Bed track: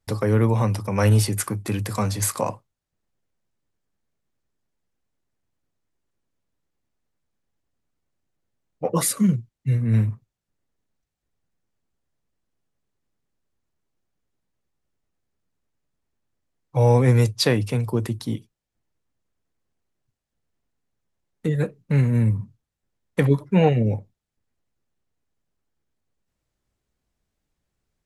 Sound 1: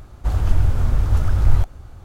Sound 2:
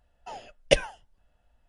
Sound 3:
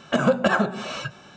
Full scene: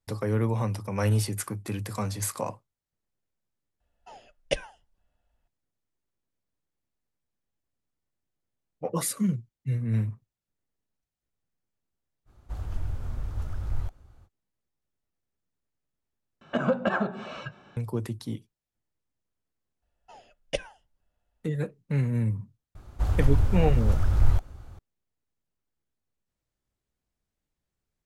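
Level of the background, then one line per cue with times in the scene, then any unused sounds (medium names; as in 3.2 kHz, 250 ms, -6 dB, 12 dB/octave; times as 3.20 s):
bed track -7 dB
3.80 s: add 2 -7.5 dB
12.25 s: add 1 -15 dB, fades 0.05 s
16.41 s: replace with 3 -5.5 dB + peaking EQ 6.9 kHz -13 dB 1.8 oct
19.82 s: add 2 -10 dB
22.75 s: add 1 -5.5 dB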